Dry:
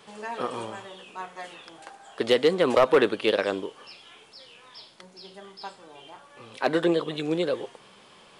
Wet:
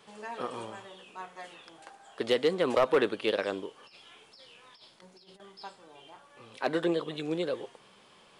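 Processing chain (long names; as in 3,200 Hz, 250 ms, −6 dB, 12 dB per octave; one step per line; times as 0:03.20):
0:03.80–0:05.40: compressor whose output falls as the input rises −48 dBFS, ratio −0.5
level −5.5 dB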